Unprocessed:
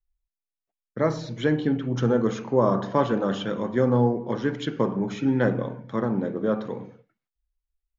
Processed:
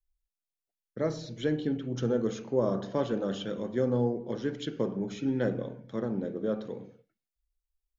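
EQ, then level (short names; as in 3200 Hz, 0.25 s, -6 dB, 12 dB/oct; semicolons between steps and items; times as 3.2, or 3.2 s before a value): graphic EQ 125/250/1000/2000 Hz -5/-3/-11/-5 dB; -2.5 dB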